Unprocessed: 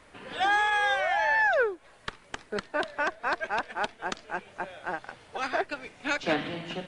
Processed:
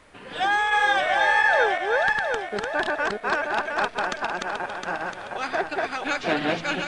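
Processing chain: backward echo that repeats 356 ms, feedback 61%, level -1 dB; trim +2 dB

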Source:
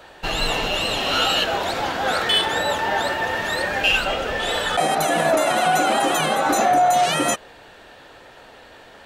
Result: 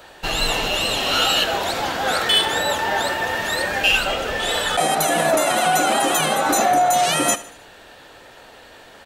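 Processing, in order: treble shelf 5.6 kHz +8 dB; feedback delay 77 ms, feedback 44%, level -17.5 dB

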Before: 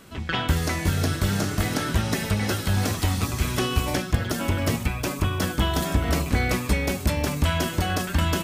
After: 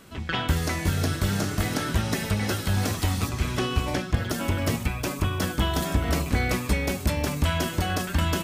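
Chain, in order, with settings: 3.29–4.17 s: treble shelf 8.3 kHz -11 dB; trim -1.5 dB

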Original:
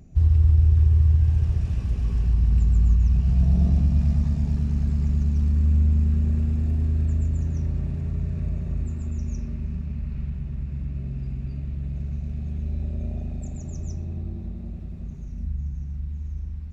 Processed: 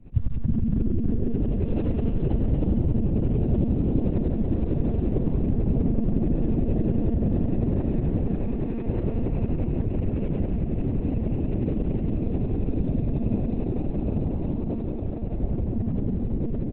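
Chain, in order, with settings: 8.34–8.86 s: high-pass 73 Hz -> 160 Hz 24 dB/octave; compression 10:1, threshold -25 dBFS, peak gain reduction 12.5 dB; tremolo saw up 11 Hz, depth 90%; saturation -17.5 dBFS, distortion -31 dB; frequency-shifting echo 317 ms, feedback 46%, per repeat +140 Hz, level -4.5 dB; monotone LPC vocoder at 8 kHz 230 Hz; trim +8.5 dB

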